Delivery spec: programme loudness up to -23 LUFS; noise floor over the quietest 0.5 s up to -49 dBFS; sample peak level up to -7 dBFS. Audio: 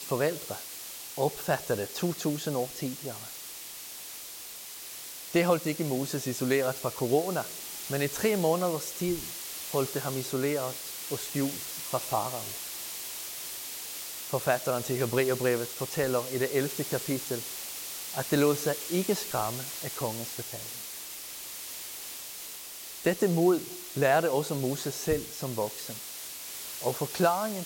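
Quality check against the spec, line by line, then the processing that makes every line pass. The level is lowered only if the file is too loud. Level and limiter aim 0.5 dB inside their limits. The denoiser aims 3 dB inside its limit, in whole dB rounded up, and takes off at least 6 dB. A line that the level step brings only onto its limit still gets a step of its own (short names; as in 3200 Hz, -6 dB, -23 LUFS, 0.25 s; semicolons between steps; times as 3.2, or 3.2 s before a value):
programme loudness -31.0 LUFS: OK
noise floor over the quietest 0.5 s -43 dBFS: fail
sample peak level -12.0 dBFS: OK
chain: denoiser 9 dB, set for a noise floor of -43 dBFS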